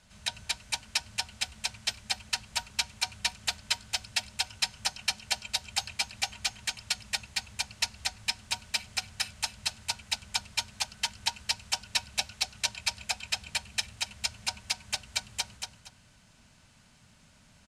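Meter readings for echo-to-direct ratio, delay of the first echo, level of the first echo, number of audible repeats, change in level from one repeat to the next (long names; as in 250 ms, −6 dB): −4.5 dB, 234 ms, −5.0 dB, 2, −12.0 dB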